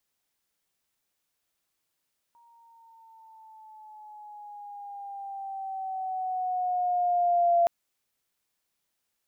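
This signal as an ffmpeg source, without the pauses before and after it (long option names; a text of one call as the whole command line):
ffmpeg -f lavfi -i "aevalsrc='pow(10,(-18+38*(t/5.32-1))/20)*sin(2*PI*941*5.32/(-5.5*log(2)/12)*(exp(-5.5*log(2)/12*t/5.32)-1))':duration=5.32:sample_rate=44100" out.wav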